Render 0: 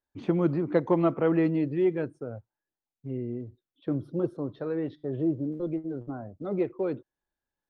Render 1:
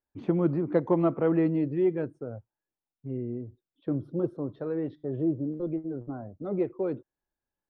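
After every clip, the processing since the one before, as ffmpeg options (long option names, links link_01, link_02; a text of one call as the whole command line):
ffmpeg -i in.wav -af "highshelf=frequency=2000:gain=-9.5" out.wav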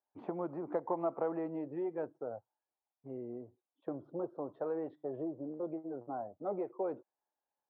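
ffmpeg -i in.wav -af "acompressor=threshold=-28dB:ratio=5,bandpass=frequency=800:width_type=q:width=2.3:csg=0,volume=6dB" out.wav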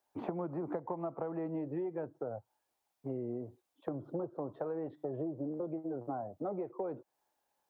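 ffmpeg -i in.wav -filter_complex "[0:a]acrossover=split=150[link_01][link_02];[link_02]acompressor=threshold=-47dB:ratio=6[link_03];[link_01][link_03]amix=inputs=2:normalize=0,volume=10.5dB" out.wav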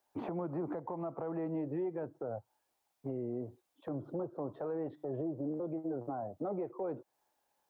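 ffmpeg -i in.wav -af "alimiter=level_in=8dB:limit=-24dB:level=0:latency=1:release=13,volume=-8dB,volume=2dB" out.wav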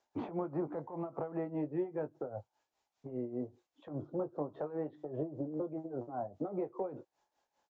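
ffmpeg -i in.wav -filter_complex "[0:a]tremolo=f=5:d=0.75,asplit=2[link_01][link_02];[link_02]adelay=20,volume=-10dB[link_03];[link_01][link_03]amix=inputs=2:normalize=0,aresample=16000,aresample=44100,volume=2.5dB" out.wav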